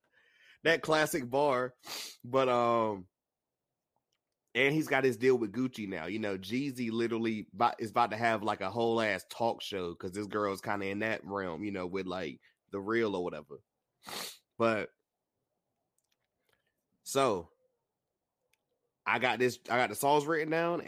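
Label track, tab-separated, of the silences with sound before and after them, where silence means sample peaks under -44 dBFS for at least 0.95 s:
3.020000	4.550000	silence
14.860000	17.060000	silence
17.420000	19.060000	silence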